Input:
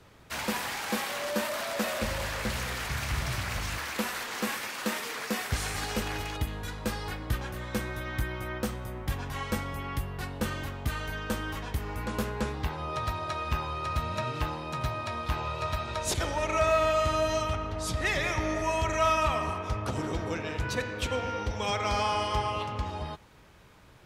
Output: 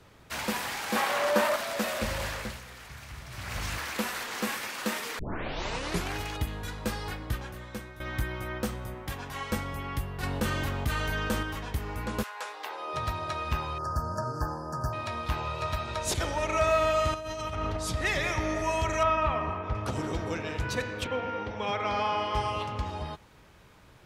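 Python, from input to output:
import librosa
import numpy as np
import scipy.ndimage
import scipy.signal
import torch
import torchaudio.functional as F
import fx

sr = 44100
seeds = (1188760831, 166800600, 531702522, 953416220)

y = fx.peak_eq(x, sr, hz=900.0, db=8.5, octaves=2.6, at=(0.95, 1.56))
y = fx.low_shelf(y, sr, hz=170.0, db=-8.5, at=(8.94, 9.52))
y = fx.env_flatten(y, sr, amount_pct=50, at=(10.23, 11.43))
y = fx.highpass(y, sr, hz=fx.line((12.22, 900.0), (12.93, 310.0)), slope=24, at=(12.22, 12.93), fade=0.02)
y = fx.brickwall_bandstop(y, sr, low_hz=1800.0, high_hz=4400.0, at=(13.78, 14.93))
y = fx.over_compress(y, sr, threshold_db=-34.0, ratio=-1.0, at=(17.14, 17.77))
y = fx.lowpass(y, sr, hz=2400.0, slope=12, at=(19.03, 19.75))
y = fx.bandpass_edges(y, sr, low_hz=130.0, high_hz=fx.line((21.03, 2600.0), (22.34, 3500.0)), at=(21.03, 22.34), fade=0.02)
y = fx.edit(y, sr, fx.fade_down_up(start_s=2.27, length_s=1.37, db=-12.5, fade_s=0.34),
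    fx.tape_start(start_s=5.19, length_s=0.96),
    fx.fade_out_to(start_s=7.08, length_s=0.92, floor_db=-12.5), tone=tone)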